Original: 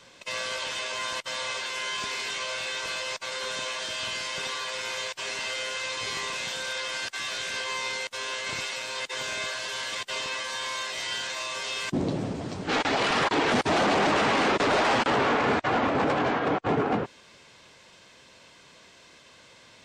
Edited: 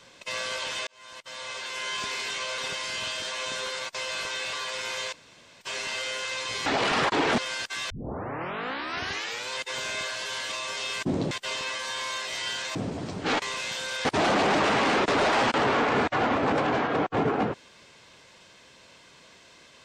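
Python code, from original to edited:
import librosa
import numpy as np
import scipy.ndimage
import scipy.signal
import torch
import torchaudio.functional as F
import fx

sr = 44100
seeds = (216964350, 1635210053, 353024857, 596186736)

y = fx.edit(x, sr, fx.fade_in_span(start_s=0.87, length_s=1.08),
    fx.reverse_span(start_s=2.58, length_s=1.95),
    fx.insert_room_tone(at_s=5.13, length_s=0.48),
    fx.swap(start_s=6.18, length_s=0.63, other_s=12.85, other_length_s=0.72),
    fx.tape_start(start_s=7.33, length_s=1.61),
    fx.move(start_s=11.4, length_s=0.78, to_s=9.96), tone=tone)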